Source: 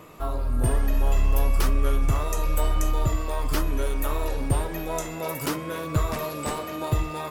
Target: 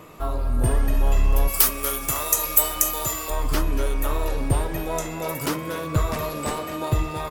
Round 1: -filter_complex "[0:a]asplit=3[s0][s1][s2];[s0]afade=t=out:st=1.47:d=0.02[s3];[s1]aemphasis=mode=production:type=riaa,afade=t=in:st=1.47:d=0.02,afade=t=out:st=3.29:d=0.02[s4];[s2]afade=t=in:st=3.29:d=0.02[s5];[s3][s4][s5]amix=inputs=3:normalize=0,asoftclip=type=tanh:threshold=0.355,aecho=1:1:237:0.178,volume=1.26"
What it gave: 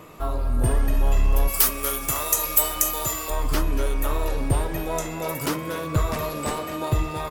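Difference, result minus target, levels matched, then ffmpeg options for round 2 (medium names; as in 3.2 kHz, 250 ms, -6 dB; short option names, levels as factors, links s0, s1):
saturation: distortion +11 dB
-filter_complex "[0:a]asplit=3[s0][s1][s2];[s0]afade=t=out:st=1.47:d=0.02[s3];[s1]aemphasis=mode=production:type=riaa,afade=t=in:st=1.47:d=0.02,afade=t=out:st=3.29:d=0.02[s4];[s2]afade=t=in:st=3.29:d=0.02[s5];[s3][s4][s5]amix=inputs=3:normalize=0,asoftclip=type=tanh:threshold=0.841,aecho=1:1:237:0.178,volume=1.26"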